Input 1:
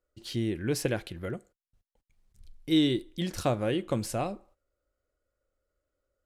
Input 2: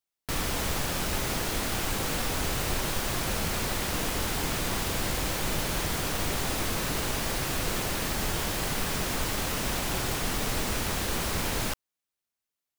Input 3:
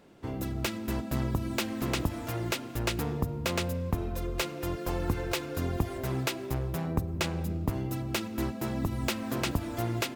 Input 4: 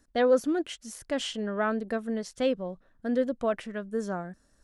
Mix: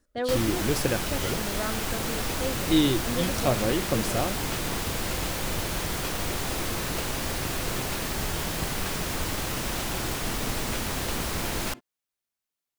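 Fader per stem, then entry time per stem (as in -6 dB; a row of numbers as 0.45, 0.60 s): +2.0, -0.5, -8.5, -5.5 dB; 0.00, 0.00, 1.65, 0.00 s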